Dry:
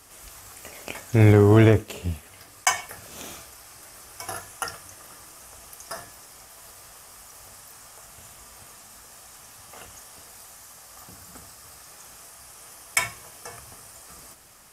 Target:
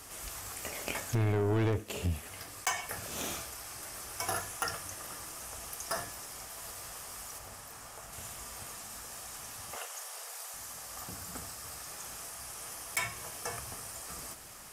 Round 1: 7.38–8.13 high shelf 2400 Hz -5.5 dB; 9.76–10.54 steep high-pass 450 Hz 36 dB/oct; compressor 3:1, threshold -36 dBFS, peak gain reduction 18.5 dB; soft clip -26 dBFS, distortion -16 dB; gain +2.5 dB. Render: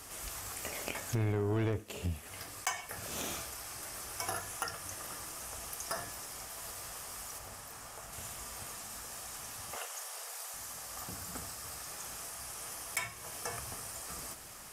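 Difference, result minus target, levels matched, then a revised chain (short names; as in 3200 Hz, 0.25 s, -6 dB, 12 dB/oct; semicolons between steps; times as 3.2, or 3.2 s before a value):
compressor: peak gain reduction +5 dB
7.38–8.13 high shelf 2400 Hz -5.5 dB; 9.76–10.54 steep high-pass 450 Hz 36 dB/oct; compressor 3:1, threshold -28.5 dBFS, peak gain reduction 13.5 dB; soft clip -26 dBFS, distortion -10 dB; gain +2.5 dB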